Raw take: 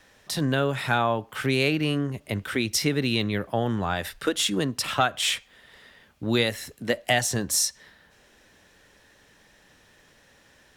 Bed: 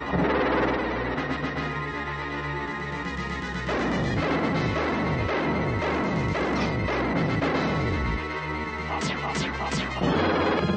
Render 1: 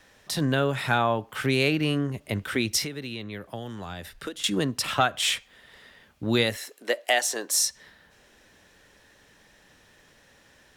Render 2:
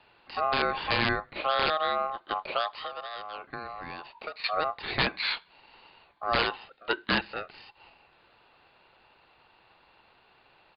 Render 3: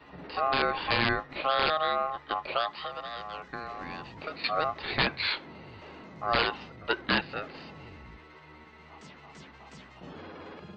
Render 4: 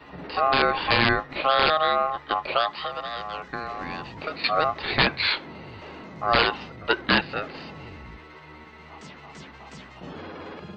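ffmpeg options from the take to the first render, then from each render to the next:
ffmpeg -i in.wav -filter_complex "[0:a]asettb=1/sr,asplit=3[link_01][link_02][link_03];[link_01]atrim=end=2.844[link_04];[link_02]atrim=start=2.84:end=4.44,asetpts=PTS-STARTPTS,afade=type=in:duration=0.004:curve=qsin,afade=type=out:start_time=1.596:duration=0.004:curve=qsin,acrossover=split=400|3100[link_05][link_06][link_07];[link_05]acompressor=threshold=-38dB:ratio=4[link_08];[link_06]acompressor=threshold=-40dB:ratio=4[link_09];[link_07]acompressor=threshold=-46dB:ratio=4[link_10];[link_08][link_09][link_10]amix=inputs=3:normalize=0[link_11];[link_03]atrim=start=4.436[link_12];[link_04][link_11]acrossfade=duration=0.004:curve1=hsin:curve2=qsin[link_13];[link_13][link_12]acrossfade=duration=0.004:curve1=qsin:curve2=hsin,asettb=1/sr,asplit=3[link_14][link_15][link_16];[link_14]atrim=end=6.574[link_17];[link_15]atrim=start=6.57:end=7.59,asetpts=PTS-STARTPTS,afade=type=in:duration=0.004:curve=qsin,afade=type=out:start_time=1.016:duration=0.004:curve=qsin,highpass=frequency=350:width=0.5412,highpass=frequency=350:width=1.3066[link_18];[link_16]atrim=start=7.586[link_19];[link_17][link_18]acrossfade=duration=0.004:curve1=hsin:curve2=qsin[link_20];[link_20][link_19]acrossfade=duration=0.004:curve1=qsin:curve2=hsin" out.wav
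ffmpeg -i in.wav -af "aresample=8000,aeval=exprs='(mod(4.73*val(0)+1,2)-1)/4.73':channel_layout=same,aresample=44100,aeval=exprs='val(0)*sin(2*PI*940*n/s)':channel_layout=same" out.wav
ffmpeg -i in.wav -i bed.wav -filter_complex "[1:a]volume=-22dB[link_01];[0:a][link_01]amix=inputs=2:normalize=0" out.wav
ffmpeg -i in.wav -af "volume=6dB" out.wav

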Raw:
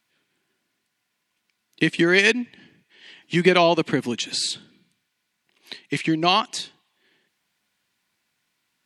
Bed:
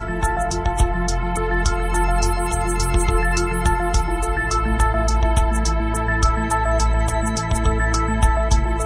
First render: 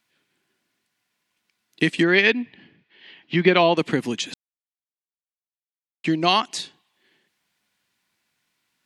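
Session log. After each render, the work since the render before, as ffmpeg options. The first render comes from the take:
ffmpeg -i in.wav -filter_complex "[0:a]asettb=1/sr,asplit=3[link_01][link_02][link_03];[link_01]atrim=end=2.034[link_04];[link_02]atrim=start=2.03:end=3.77,asetpts=PTS-STARTPTS,afade=type=in:duration=0.004:curve=qsin,afade=type=out:start_time=1.736:duration=0.004:curve=qsin,lowpass=frequency=4100:width=0.5412,lowpass=frequency=4100:width=1.3066[link_05];[link_03]atrim=start=3.766[link_06];[link_04][link_05]acrossfade=duration=0.004:curve1=hsin:curve2=qsin[link_07];[link_07][link_06]acrossfade=duration=0.004:curve1=qsin:curve2=hsin,asplit=3[link_08][link_09][link_10];[link_08]atrim=end=4.34,asetpts=PTS-STARTPTS,afade=type=out:start_time=4.336:duration=0.004:curve=hsin[link_11];[link_09]atrim=start=4.34:end=6.04,asetpts=PTS-STARTPTS,volume=0[link_12];[link_10]atrim=start=6.04,asetpts=PTS-STARTPTS,afade=type=in:duration=0.004:curve=hsin[link_13];[link_11][link_12][link_13]concat=n=3:v=0:a=1" out.wav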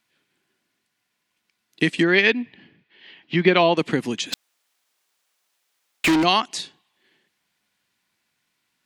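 ffmpeg -i in.wav -filter_complex "[0:a]asplit=3[link_01][link_02][link_03];[link_01]afade=type=out:start_time=4.32:duration=0.02[link_04];[link_02]asplit=2[link_05][link_06];[link_06]highpass=frequency=720:poles=1,volume=34dB,asoftclip=type=tanh:threshold=-11.5dB[link_07];[link_05][link_07]amix=inputs=2:normalize=0,lowpass=frequency=6300:poles=1,volume=-6dB,afade=type=in:start_time=4.32:duration=0.02,afade=type=out:start_time=6.22:duration=0.02[link_08];[link_03]afade=type=in:start_time=6.22:duration=0.02[link_09];[link_04][link_08][link_09]amix=inputs=3:normalize=0" out.wav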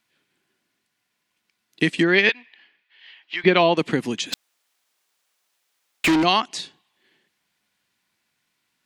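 ffmpeg -i in.wav -filter_complex "[0:a]asettb=1/sr,asplit=3[link_01][link_02][link_03];[link_01]atrim=end=2.294[link_04];[link_02]atrim=start=2.29:end=3.44,asetpts=PTS-STARTPTS,afade=type=in:duration=0.004:curve=qsin,afade=type=out:start_time=1.146:duration=0.004:curve=qsin,highpass=1000[link_05];[link_03]atrim=start=3.436[link_06];[link_04][link_05]acrossfade=duration=0.004:curve1=hsin:curve2=qsin[link_07];[link_07][link_06]acrossfade=duration=0.004:curve1=qsin:curve2=hsin,asettb=1/sr,asplit=3[link_08][link_09][link_10];[link_08]atrim=end=6.074[link_11];[link_09]atrim=start=6.07:end=6.63,asetpts=PTS-STARTPTS,afade=type=in:duration=0.004:curve=qsin,afade=type=out:start_time=0.556:duration=0.004:curve=qsin,highshelf=frequency=11000:gain=-9.5[link_12];[link_10]atrim=start=6.626[link_13];[link_11][link_12]acrossfade=duration=0.004:curve1=hsin:curve2=qsin[link_14];[link_14][link_13]acrossfade=duration=0.004:curve1=qsin:curve2=hsin" out.wav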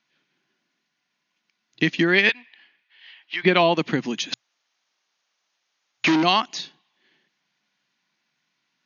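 ffmpeg -i in.wav -af "afftfilt=real='re*between(b*sr/4096,120,6800)':imag='im*between(b*sr/4096,120,6800)':win_size=4096:overlap=0.75,equalizer=frequency=440:width_type=o:width=0.55:gain=-4" out.wav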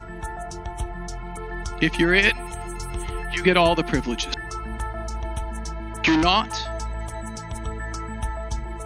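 ffmpeg -i in.wav -i bed.wav -filter_complex "[1:a]volume=-12dB[link_01];[0:a][link_01]amix=inputs=2:normalize=0" out.wav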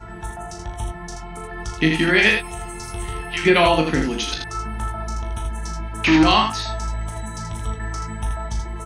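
ffmpeg -i in.wav -filter_complex "[0:a]asplit=2[link_01][link_02];[link_02]adelay=19,volume=-6.5dB[link_03];[link_01][link_03]amix=inputs=2:normalize=0,aecho=1:1:38|80:0.501|0.562" out.wav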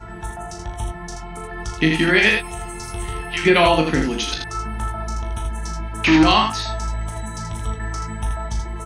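ffmpeg -i in.wav -af "volume=1dB,alimiter=limit=-3dB:level=0:latency=1" out.wav

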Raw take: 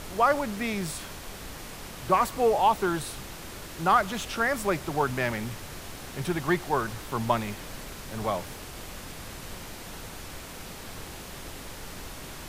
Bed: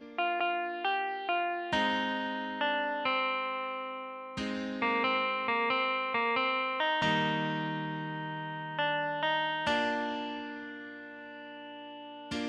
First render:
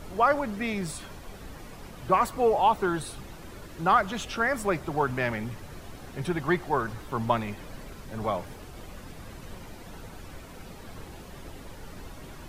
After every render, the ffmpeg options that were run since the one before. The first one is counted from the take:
ffmpeg -i in.wav -af "afftdn=noise_reduction=10:noise_floor=-42" out.wav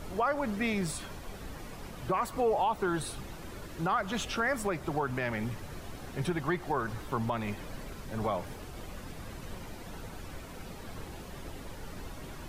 ffmpeg -i in.wav -af "alimiter=limit=-20dB:level=0:latency=1:release=177" out.wav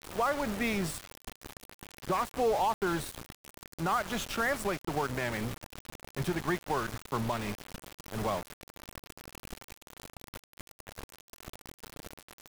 ffmpeg -i in.wav -af "aeval=exprs='val(0)*gte(abs(val(0)),0.0178)':channel_layout=same" out.wav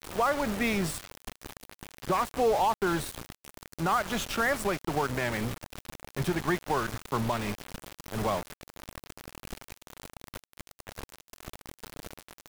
ffmpeg -i in.wav -af "volume=3dB" out.wav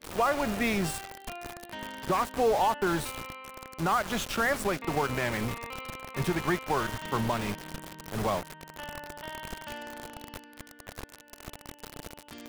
ffmpeg -i in.wav -i bed.wav -filter_complex "[1:a]volume=-11.5dB[link_01];[0:a][link_01]amix=inputs=2:normalize=0" out.wav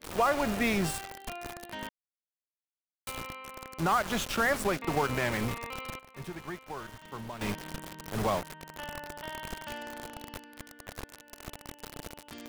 ffmpeg -i in.wav -filter_complex "[0:a]asplit=5[link_01][link_02][link_03][link_04][link_05];[link_01]atrim=end=1.89,asetpts=PTS-STARTPTS,afade=type=out:start_time=1.886:duration=0.004:curve=hsin[link_06];[link_02]atrim=start=1.89:end=3.07,asetpts=PTS-STARTPTS,volume=0[link_07];[link_03]atrim=start=3.07:end=5.992,asetpts=PTS-STARTPTS,afade=type=in:duration=0.004:curve=hsin[link_08];[link_04]atrim=start=5.988:end=7.412,asetpts=PTS-STARTPTS,volume=-12dB[link_09];[link_05]atrim=start=7.408[link_10];[link_06][link_07][link_08]concat=n=3:v=0:a=1[link_11];[link_11][link_09]acrossfade=duration=0.004:curve1=hsin:curve2=hsin[link_12];[link_12][link_10]acrossfade=duration=0.004:curve1=hsin:curve2=hsin" out.wav

